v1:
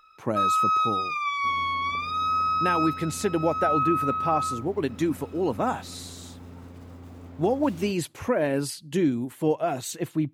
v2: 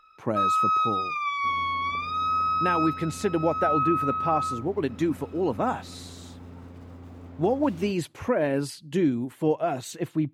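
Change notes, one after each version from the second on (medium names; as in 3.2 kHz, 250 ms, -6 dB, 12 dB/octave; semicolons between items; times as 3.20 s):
master: add treble shelf 5.5 kHz -8 dB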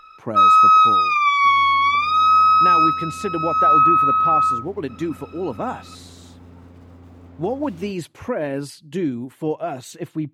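first sound +11.5 dB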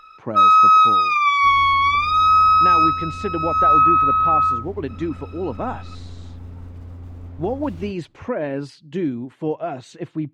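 speech: add distance through air 110 m; second sound: remove high-pass 150 Hz 12 dB/octave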